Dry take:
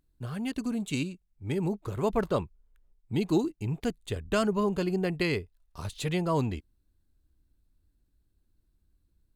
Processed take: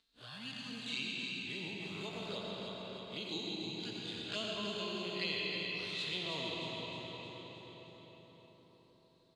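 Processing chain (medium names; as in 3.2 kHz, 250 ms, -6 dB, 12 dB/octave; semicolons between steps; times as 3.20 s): spectral blur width 81 ms; tilt EQ -1.5 dB/octave; touch-sensitive flanger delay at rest 4.5 ms, full sweep at -24 dBFS; band-pass filter 3.8 kHz, Q 3.1; on a send: feedback delay 312 ms, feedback 48%, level -6 dB; on the sum: algorithmic reverb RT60 3.7 s, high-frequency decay 0.55×, pre-delay 50 ms, DRR -2.5 dB; three bands compressed up and down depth 40%; trim +12 dB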